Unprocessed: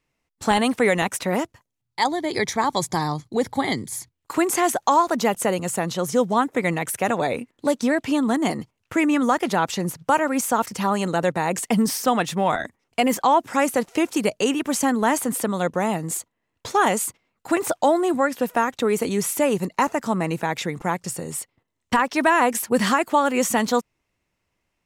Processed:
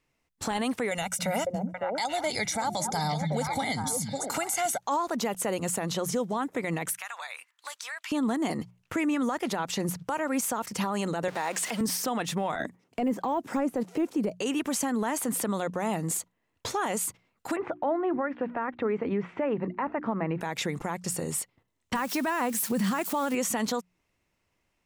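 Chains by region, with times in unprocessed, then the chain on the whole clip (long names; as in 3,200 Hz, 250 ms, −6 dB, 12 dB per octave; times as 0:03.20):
0:00.91–0:04.78: parametric band 8,100 Hz +7 dB 2.2 octaves + comb filter 1.4 ms, depth 78% + echo through a band-pass that steps 277 ms, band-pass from 160 Hz, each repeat 1.4 octaves, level −1.5 dB
0:06.93–0:08.12: high-pass filter 1,100 Hz 24 dB per octave + downward compressor 4 to 1, threshold −35 dBFS
0:11.28–0:11.81: converter with a step at zero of −29 dBFS + meter weighting curve A
0:12.60–0:14.35: high-pass filter 180 Hz + de-essing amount 95% + low-shelf EQ 460 Hz +12 dB
0:17.56–0:20.41: low-pass filter 2,200 Hz 24 dB per octave + mains-hum notches 60/120/180/240/300/360 Hz
0:21.95–0:23.35: spike at every zero crossing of −25 dBFS + parametric band 190 Hz +12.5 dB 0.56 octaves
whole clip: mains-hum notches 60/120/180 Hz; downward compressor 2 to 1, threshold −26 dBFS; brickwall limiter −20 dBFS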